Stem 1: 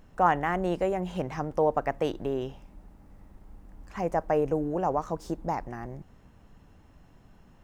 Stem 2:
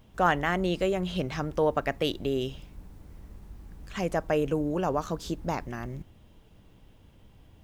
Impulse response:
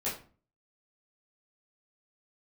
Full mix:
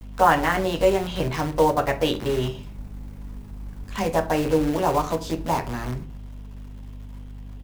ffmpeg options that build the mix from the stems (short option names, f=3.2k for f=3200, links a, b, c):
-filter_complex "[0:a]equalizer=f=980:t=o:w=0.22:g=11.5,acrusher=bits=6:dc=4:mix=0:aa=0.000001,volume=-2.5dB,asplit=2[a][b];[b]volume=-10.5dB[c];[1:a]aeval=exprs='val(0)+0.00631*(sin(2*PI*50*n/s)+sin(2*PI*2*50*n/s)/2+sin(2*PI*3*50*n/s)/3+sin(2*PI*4*50*n/s)/4+sin(2*PI*5*50*n/s)/5)':c=same,volume=-1,adelay=11,volume=1.5dB,asplit=2[d][e];[e]volume=-9.5dB[f];[2:a]atrim=start_sample=2205[g];[c][f]amix=inputs=2:normalize=0[h];[h][g]afir=irnorm=-1:irlink=0[i];[a][d][i]amix=inputs=3:normalize=0"